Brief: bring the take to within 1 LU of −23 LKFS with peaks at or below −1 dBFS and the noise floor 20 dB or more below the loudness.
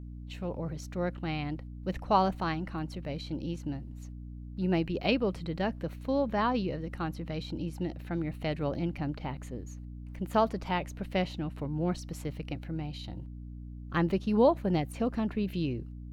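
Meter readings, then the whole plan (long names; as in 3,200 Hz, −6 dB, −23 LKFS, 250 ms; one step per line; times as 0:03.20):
mains hum 60 Hz; hum harmonics up to 300 Hz; level of the hum −40 dBFS; integrated loudness −32.5 LKFS; sample peak −11.5 dBFS; target loudness −23.0 LKFS
→ hum removal 60 Hz, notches 5
level +9.5 dB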